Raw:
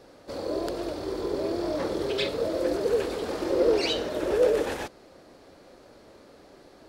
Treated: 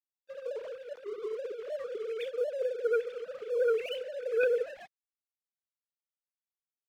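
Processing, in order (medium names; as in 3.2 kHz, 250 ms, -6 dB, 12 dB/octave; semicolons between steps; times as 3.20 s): formants replaced by sine waves; Chebyshev shaper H 3 -13 dB, 5 -9 dB, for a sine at -8 dBFS; crossover distortion -41.5 dBFS; trim -8.5 dB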